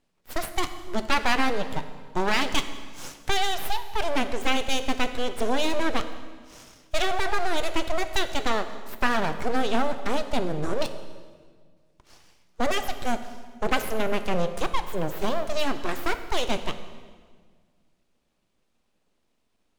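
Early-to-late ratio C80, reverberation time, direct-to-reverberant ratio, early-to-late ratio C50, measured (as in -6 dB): 12.0 dB, 1.7 s, 9.0 dB, 11.0 dB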